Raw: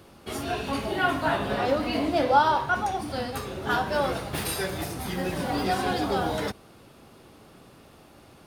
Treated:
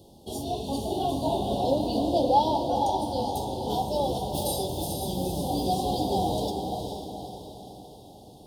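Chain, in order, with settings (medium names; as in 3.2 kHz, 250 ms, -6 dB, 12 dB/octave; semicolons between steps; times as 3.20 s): elliptic band-stop 850–3400 Hz, stop band 40 dB; echo that smears into a reverb 457 ms, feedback 49%, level -5 dB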